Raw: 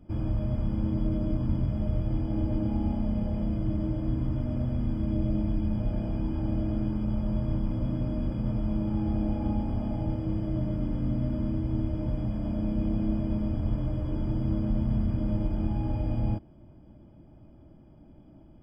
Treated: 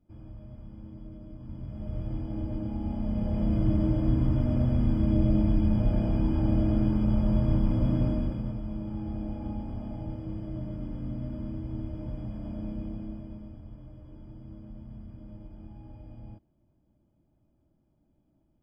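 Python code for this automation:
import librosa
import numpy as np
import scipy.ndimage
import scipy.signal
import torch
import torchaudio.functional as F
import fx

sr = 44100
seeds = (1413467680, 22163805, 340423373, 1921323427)

y = fx.gain(x, sr, db=fx.line((1.35, -16.5), (2.02, -5.0), (2.79, -5.0), (3.59, 4.0), (8.06, 4.0), (8.6, -6.5), (12.69, -6.5), (13.69, -17.5)))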